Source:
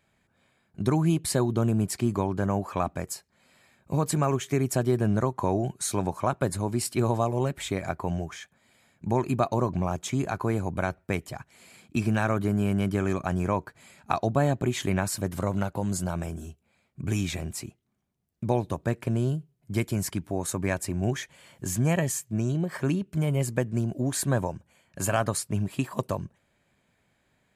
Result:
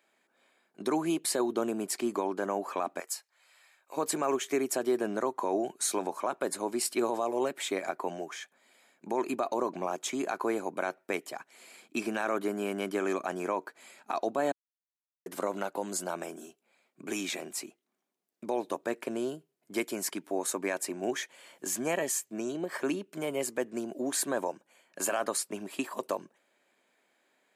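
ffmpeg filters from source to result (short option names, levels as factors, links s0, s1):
-filter_complex "[0:a]asplit=3[s0][s1][s2];[s0]afade=t=out:st=2.99:d=0.02[s3];[s1]highpass=910,afade=t=in:st=2.99:d=0.02,afade=t=out:st=3.96:d=0.02[s4];[s2]afade=t=in:st=3.96:d=0.02[s5];[s3][s4][s5]amix=inputs=3:normalize=0,asplit=3[s6][s7][s8];[s6]atrim=end=14.52,asetpts=PTS-STARTPTS,afade=t=out:st=14.516:d=0.004:c=hsin[s9];[s7]atrim=start=14.52:end=15.26,asetpts=PTS-STARTPTS,volume=0[s10];[s8]atrim=start=15.26,asetpts=PTS-STARTPTS,afade=t=in:d=0.004:c=hsin[s11];[s9][s10][s11]concat=n=3:v=0:a=1,highpass=f=290:w=0.5412,highpass=f=290:w=1.3066,alimiter=limit=0.112:level=0:latency=1:release=30"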